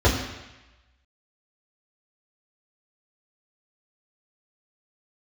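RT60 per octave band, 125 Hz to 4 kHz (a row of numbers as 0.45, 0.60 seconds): 0.95, 0.95, 0.95, 1.1, 1.2, 1.1 seconds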